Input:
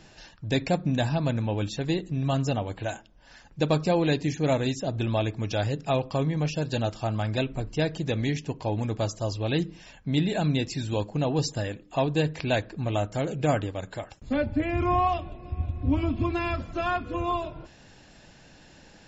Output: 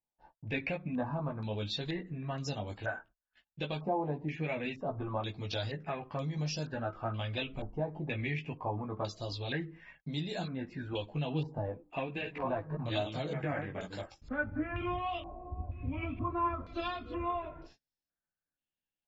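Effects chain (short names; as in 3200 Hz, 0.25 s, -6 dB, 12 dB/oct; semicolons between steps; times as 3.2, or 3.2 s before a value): 11.7–14.03 reverse delay 0.263 s, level -6 dB; spectral noise reduction 6 dB; gate -51 dBFS, range -36 dB; compressor, threshold -26 dBFS, peak gain reduction 8 dB; chorus voices 6, 0.16 Hz, delay 16 ms, depth 4.7 ms; stepped low-pass 2.1 Hz 870–5200 Hz; gain -4 dB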